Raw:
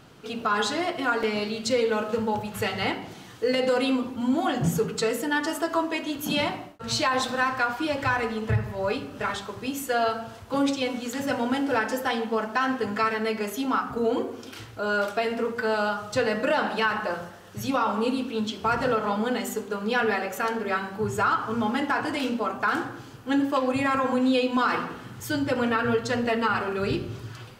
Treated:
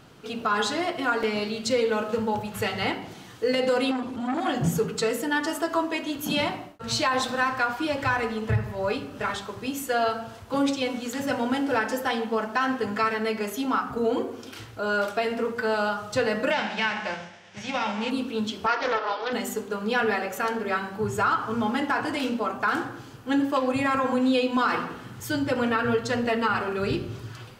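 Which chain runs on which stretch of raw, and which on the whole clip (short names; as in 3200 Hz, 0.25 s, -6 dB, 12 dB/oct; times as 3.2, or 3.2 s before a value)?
3.91–4.48 LPF 11000 Hz + upward compressor, threshold -27 dBFS + core saturation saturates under 930 Hz
16.49–18.1 spectral whitening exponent 0.6 + speaker cabinet 110–5500 Hz, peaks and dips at 120 Hz -9 dB, 280 Hz -9 dB, 440 Hz -7 dB, 1200 Hz -9 dB, 2200 Hz +5 dB, 4300 Hz -8 dB
18.66–19.33 brick-wall FIR band-pass 260–5700 Hz + tilt +2 dB/oct + Doppler distortion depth 0.23 ms
whole clip: dry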